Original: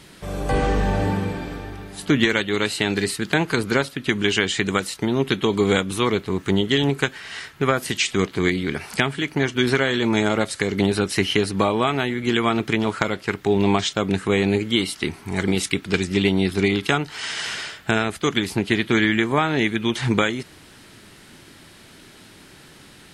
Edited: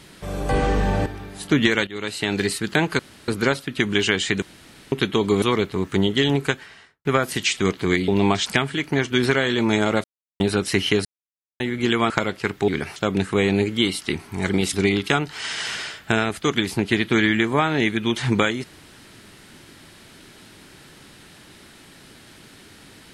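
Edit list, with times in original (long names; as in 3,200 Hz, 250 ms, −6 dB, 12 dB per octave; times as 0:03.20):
0:01.06–0:01.64: remove
0:02.45–0:02.98: fade in, from −13.5 dB
0:03.57: splice in room tone 0.29 s
0:04.71–0:05.21: fill with room tone
0:05.71–0:05.96: remove
0:06.98–0:07.59: fade out and dull
0:08.62–0:08.90: swap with 0:13.52–0:13.90
0:10.48–0:10.84: silence
0:11.49–0:12.04: silence
0:12.54–0:12.94: remove
0:15.67–0:16.52: remove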